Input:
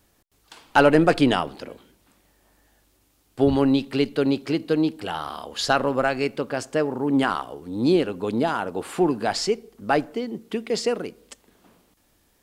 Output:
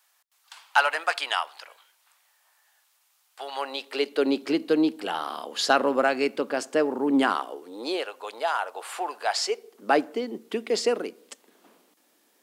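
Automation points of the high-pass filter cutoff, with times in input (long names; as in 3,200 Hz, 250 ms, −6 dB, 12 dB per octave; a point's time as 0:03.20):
high-pass filter 24 dB per octave
0:03.43 850 Hz
0:04.44 230 Hz
0:07.31 230 Hz
0:08.12 630 Hz
0:09.33 630 Hz
0:09.92 250 Hz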